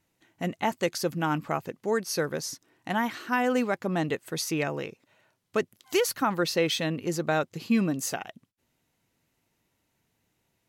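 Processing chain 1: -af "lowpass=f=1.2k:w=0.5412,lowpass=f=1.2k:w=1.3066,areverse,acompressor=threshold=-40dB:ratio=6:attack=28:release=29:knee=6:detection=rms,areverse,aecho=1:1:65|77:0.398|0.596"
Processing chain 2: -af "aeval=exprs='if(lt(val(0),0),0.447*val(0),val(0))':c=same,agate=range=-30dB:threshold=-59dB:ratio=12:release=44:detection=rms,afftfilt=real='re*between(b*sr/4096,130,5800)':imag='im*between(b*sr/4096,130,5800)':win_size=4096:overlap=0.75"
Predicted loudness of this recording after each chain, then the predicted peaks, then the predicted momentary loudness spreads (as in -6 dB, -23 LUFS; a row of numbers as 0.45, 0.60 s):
-39.5, -32.0 LUFS; -24.5, -14.5 dBFS; 6, 10 LU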